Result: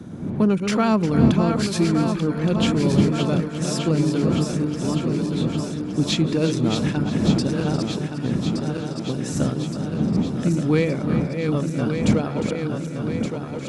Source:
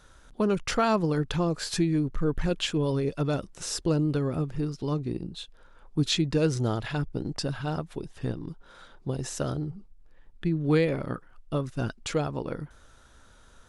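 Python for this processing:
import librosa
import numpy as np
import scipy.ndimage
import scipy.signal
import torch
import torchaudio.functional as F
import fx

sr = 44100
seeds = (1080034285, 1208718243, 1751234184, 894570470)

p1 = fx.reverse_delay_fb(x, sr, ms=585, feedback_pct=78, wet_db=-6.0)
p2 = fx.dmg_wind(p1, sr, seeds[0], corner_hz=180.0, level_db=-29.0)
p3 = scipy.signal.sosfilt(scipy.signal.butter(2, 120.0, 'highpass', fs=sr, output='sos'), p2)
p4 = fx.small_body(p3, sr, hz=(210.0, 2300.0), ring_ms=30, db=8)
p5 = 10.0 ** (-18.5 / 20.0) * np.tanh(p4 / 10.0 ** (-18.5 / 20.0))
p6 = p4 + F.gain(torch.from_numpy(p5), -10.5).numpy()
y = p6 + 10.0 ** (-11.5 / 20.0) * np.pad(p6, (int(354 * sr / 1000.0), 0))[:len(p6)]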